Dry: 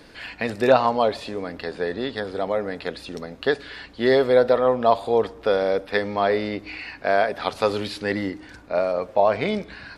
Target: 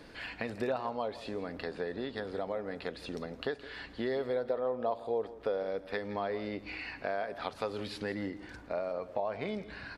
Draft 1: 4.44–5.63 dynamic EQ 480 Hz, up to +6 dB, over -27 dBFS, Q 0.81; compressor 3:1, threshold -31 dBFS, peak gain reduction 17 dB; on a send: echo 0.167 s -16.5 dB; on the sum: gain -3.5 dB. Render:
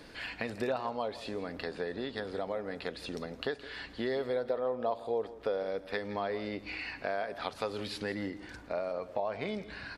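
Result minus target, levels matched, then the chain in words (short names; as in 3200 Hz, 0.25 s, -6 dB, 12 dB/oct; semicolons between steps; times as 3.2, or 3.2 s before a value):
4000 Hz band +2.5 dB
4.44–5.63 dynamic EQ 480 Hz, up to +6 dB, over -27 dBFS, Q 0.81; compressor 3:1, threshold -31 dBFS, peak gain reduction 17 dB; high shelf 2700 Hz -4.5 dB; on a send: echo 0.167 s -16.5 dB; on the sum: gain -3.5 dB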